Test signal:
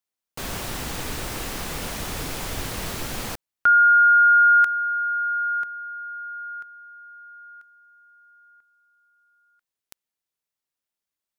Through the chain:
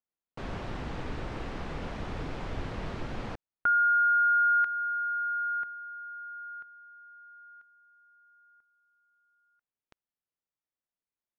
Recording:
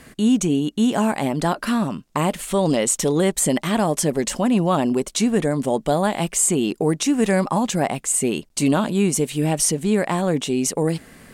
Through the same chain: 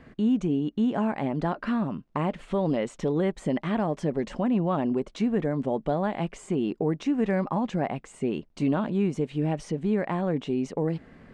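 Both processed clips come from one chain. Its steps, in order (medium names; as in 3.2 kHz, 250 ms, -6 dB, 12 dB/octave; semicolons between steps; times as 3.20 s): dynamic bell 2 kHz, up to +3 dB, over -32 dBFS, Q 1.4; in parallel at -1.5 dB: compression, threshold -22 dBFS; on the sum: tape spacing loss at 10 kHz 33 dB; trim -8 dB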